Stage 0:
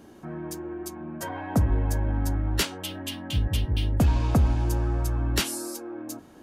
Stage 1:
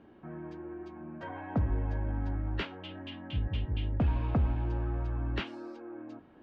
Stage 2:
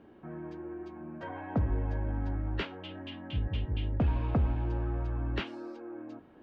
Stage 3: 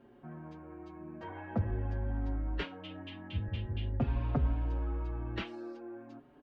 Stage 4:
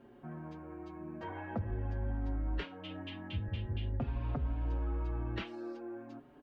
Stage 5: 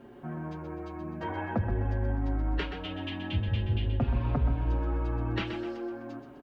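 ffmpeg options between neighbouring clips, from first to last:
-af "lowpass=f=3000:w=0.5412,lowpass=f=3000:w=1.3066,volume=0.447"
-af "equalizer=f=450:t=o:w=0.77:g=2.5"
-filter_complex "[0:a]asplit=2[s0][s1];[s1]adelay=5.3,afreqshift=0.5[s2];[s0][s2]amix=inputs=2:normalize=1"
-af "alimiter=level_in=1.78:limit=0.0631:level=0:latency=1:release=320,volume=0.562,volume=1.19"
-af "aecho=1:1:127|254|381|508|635:0.376|0.158|0.0663|0.0278|0.0117,volume=2.37"

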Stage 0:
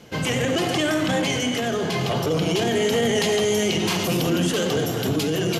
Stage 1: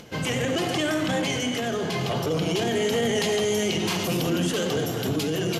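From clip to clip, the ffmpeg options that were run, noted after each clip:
-af "acompressor=mode=upward:threshold=0.0126:ratio=2.5,volume=0.708"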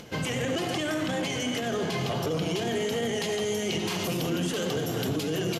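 -af "alimiter=limit=0.1:level=0:latency=1:release=257,aecho=1:1:577:0.15"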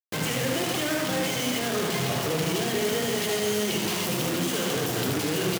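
-af "acrusher=bits=4:mix=0:aa=0.000001,highpass=92,aecho=1:1:76:0.531"

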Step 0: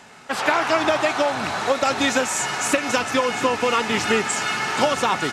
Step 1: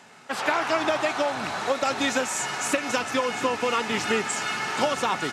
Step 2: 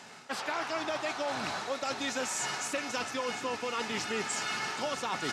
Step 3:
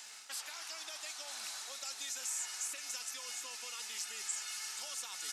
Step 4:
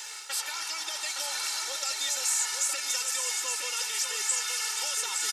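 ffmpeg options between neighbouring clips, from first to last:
-af "highpass=99,volume=0.596"
-af "equalizer=f=5000:w=1.4:g=5,areverse,acompressor=threshold=0.0282:ratio=6,areverse"
-filter_complex "[0:a]aderivative,acrossover=split=3200|6700[s0][s1][s2];[s0]acompressor=threshold=0.00141:ratio=4[s3];[s1]acompressor=threshold=0.00158:ratio=4[s4];[s2]acompressor=threshold=0.00447:ratio=4[s5];[s3][s4][s5]amix=inputs=3:normalize=0,volume=2.24"
-af "aecho=1:1:2.2:0.83,aecho=1:1:867:0.531,volume=2.66"

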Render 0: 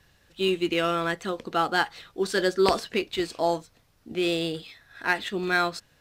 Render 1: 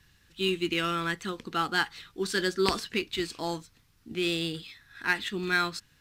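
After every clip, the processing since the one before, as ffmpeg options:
-af "equalizer=f=610:t=o:w=0.94:g=-14.5"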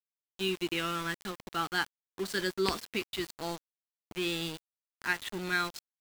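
-af "aeval=exprs='val(0)*gte(abs(val(0)),0.0211)':c=same,volume=0.631"

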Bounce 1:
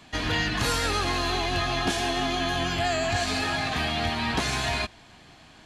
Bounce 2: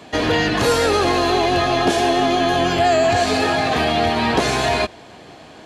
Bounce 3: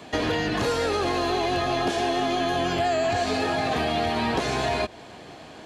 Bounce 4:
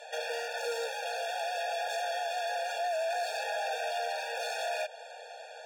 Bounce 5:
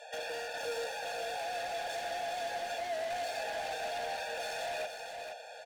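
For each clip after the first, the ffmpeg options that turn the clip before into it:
-filter_complex "[0:a]highpass=65,equalizer=f=480:w=0.94:g=12,asplit=2[s0][s1];[s1]alimiter=limit=0.15:level=0:latency=1,volume=1[s2];[s0][s2]amix=inputs=2:normalize=0"
-filter_complex "[0:a]acrossover=split=940|7300[s0][s1][s2];[s0]acompressor=threshold=0.0794:ratio=4[s3];[s1]acompressor=threshold=0.0398:ratio=4[s4];[s2]acompressor=threshold=0.00316:ratio=4[s5];[s3][s4][s5]amix=inputs=3:normalize=0,volume=0.794"
-af "asoftclip=type=hard:threshold=0.0335,afftfilt=real='re*eq(mod(floor(b*sr/1024/470),2),1)':imag='im*eq(mod(floor(b*sr/1024/470),2),1)':win_size=1024:overlap=0.75"
-filter_complex "[0:a]asoftclip=type=hard:threshold=0.0237,asplit=2[s0][s1];[s1]aecho=0:1:471|942|1413:0.473|0.114|0.0273[s2];[s0][s2]amix=inputs=2:normalize=0,volume=0.75"

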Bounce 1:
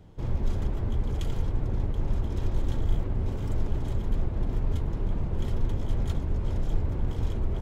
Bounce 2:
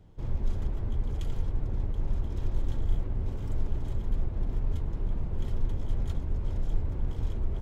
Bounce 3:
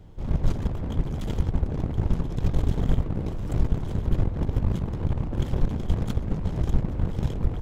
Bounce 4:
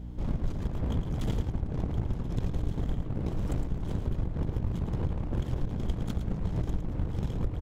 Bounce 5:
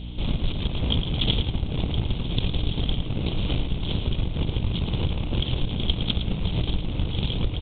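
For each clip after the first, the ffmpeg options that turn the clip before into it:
-af "lowshelf=f=64:g=6,volume=0.501"
-af "aeval=exprs='0.188*(cos(1*acos(clip(val(0)/0.188,-1,1)))-cos(1*PI/2))+0.075*(cos(7*acos(clip(val(0)/0.188,-1,1)))-cos(7*PI/2))':c=same,volume=1.33"
-af "acompressor=threshold=0.0501:ratio=6,aeval=exprs='val(0)+0.0112*(sin(2*PI*60*n/s)+sin(2*PI*2*60*n/s)/2+sin(2*PI*3*60*n/s)/3+sin(2*PI*4*60*n/s)/4+sin(2*PI*5*60*n/s)/5)':c=same,aecho=1:1:110:0.355"
-af "acrusher=bits=10:mix=0:aa=0.000001,aexciter=amount=15.4:drive=4.8:freq=2700,volume=1.78" -ar 8000 -c:a pcm_mulaw

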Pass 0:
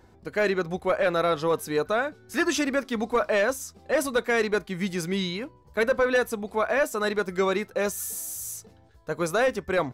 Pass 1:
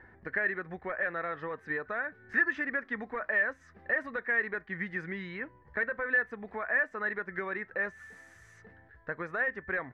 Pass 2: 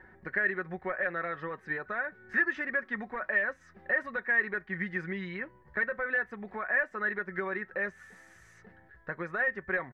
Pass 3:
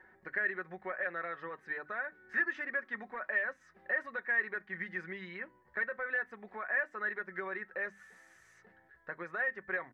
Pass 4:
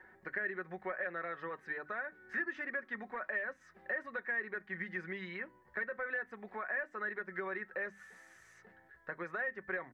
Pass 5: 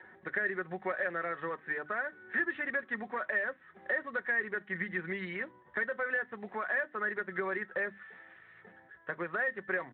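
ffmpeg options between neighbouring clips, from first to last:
-af "acompressor=threshold=0.02:ratio=4,lowpass=f=1800:t=q:w=10,volume=0.631"
-af "aecho=1:1:5.4:0.43"
-af "lowshelf=f=200:g=-12,bandreject=f=50:t=h:w=6,bandreject=f=100:t=h:w=6,bandreject=f=150:t=h:w=6,bandreject=f=200:t=h:w=6,bandreject=f=250:t=h:w=6,bandreject=f=300:t=h:w=6,volume=0.631"
-filter_complex "[0:a]acrossover=split=490[s0][s1];[s1]acompressor=threshold=0.00891:ratio=2[s2];[s0][s2]amix=inputs=2:normalize=0,volume=1.19"
-af "volume=1.78" -ar 8000 -c:a libspeex -b:a 15k

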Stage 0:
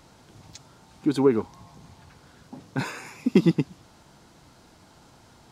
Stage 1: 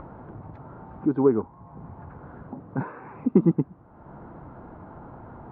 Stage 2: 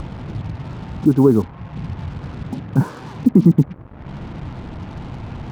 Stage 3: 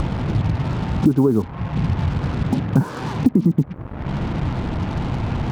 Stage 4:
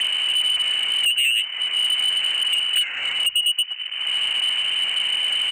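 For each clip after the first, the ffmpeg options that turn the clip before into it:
-af "lowpass=f=1300:w=0.5412,lowpass=f=1300:w=1.3066,acompressor=mode=upward:threshold=0.0282:ratio=2.5"
-af "bass=f=250:g=12,treble=f=4000:g=0,acrusher=bits=6:mix=0:aa=0.5,alimiter=level_in=1.88:limit=0.891:release=50:level=0:latency=1,volume=0.891"
-af "acompressor=threshold=0.1:ratio=10,volume=2.51"
-filter_complex "[0:a]lowpass=f=2600:t=q:w=0.5098,lowpass=f=2600:t=q:w=0.6013,lowpass=f=2600:t=q:w=0.9,lowpass=f=2600:t=q:w=2.563,afreqshift=-3100,acrossover=split=160[s0][s1];[s0]aecho=1:1:219:0.562[s2];[s1]asoftclip=type=tanh:threshold=0.119[s3];[s2][s3]amix=inputs=2:normalize=0,volume=1.33"

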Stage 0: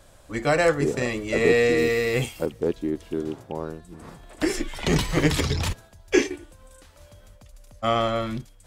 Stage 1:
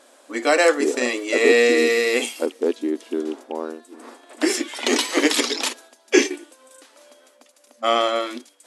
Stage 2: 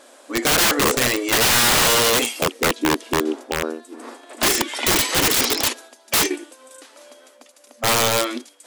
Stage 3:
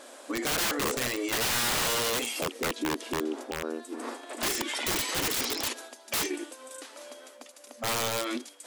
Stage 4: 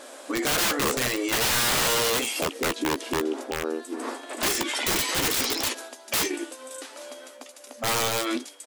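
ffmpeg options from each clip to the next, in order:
-af "afftfilt=real='re*between(b*sr/4096,230,12000)':imag='im*between(b*sr/4096,230,12000)':win_size=4096:overlap=0.75,adynamicequalizer=threshold=0.0141:dfrequency=2400:dqfactor=0.7:tfrequency=2400:tqfactor=0.7:attack=5:release=100:ratio=0.375:range=2.5:mode=boostabove:tftype=highshelf,volume=1.5"
-af "aeval=exprs='(mod(6.31*val(0)+1,2)-1)/6.31':c=same,volume=1.68"
-af "alimiter=limit=0.0708:level=0:latency=1:release=92"
-filter_complex "[0:a]asplit=2[s0][s1];[s1]adelay=15,volume=0.316[s2];[s0][s2]amix=inputs=2:normalize=0,volume=1.58"

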